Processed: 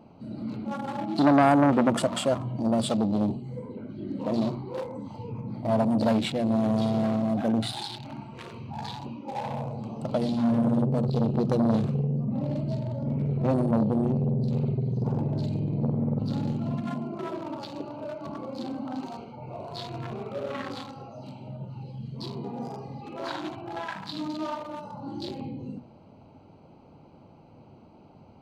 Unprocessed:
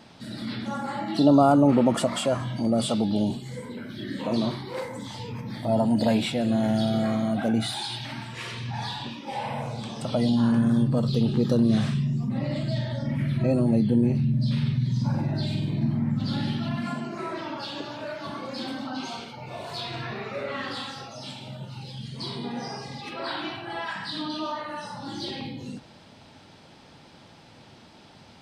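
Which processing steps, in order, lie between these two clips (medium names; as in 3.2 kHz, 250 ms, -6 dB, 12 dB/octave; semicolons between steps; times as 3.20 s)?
local Wiener filter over 25 samples; hum notches 60/120/180/240 Hz; transformer saturation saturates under 880 Hz; trim +1 dB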